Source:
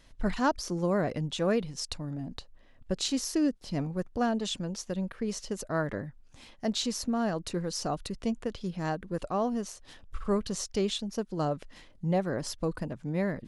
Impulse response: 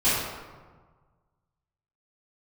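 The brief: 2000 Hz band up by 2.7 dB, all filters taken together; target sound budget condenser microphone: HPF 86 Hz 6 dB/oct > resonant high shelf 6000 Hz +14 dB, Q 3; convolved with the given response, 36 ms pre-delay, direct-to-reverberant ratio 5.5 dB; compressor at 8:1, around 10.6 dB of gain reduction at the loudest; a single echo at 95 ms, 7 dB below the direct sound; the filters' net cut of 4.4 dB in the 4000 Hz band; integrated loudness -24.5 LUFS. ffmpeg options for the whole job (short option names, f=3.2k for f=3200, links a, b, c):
-filter_complex "[0:a]equalizer=f=2k:t=o:g=6,equalizer=f=4k:t=o:g=-4,acompressor=threshold=-33dB:ratio=8,aecho=1:1:95:0.447,asplit=2[a][b];[1:a]atrim=start_sample=2205,adelay=36[c];[b][c]afir=irnorm=-1:irlink=0,volume=-21dB[d];[a][d]amix=inputs=2:normalize=0,highpass=f=86:p=1,highshelf=f=6k:t=q:w=3:g=14,volume=6dB"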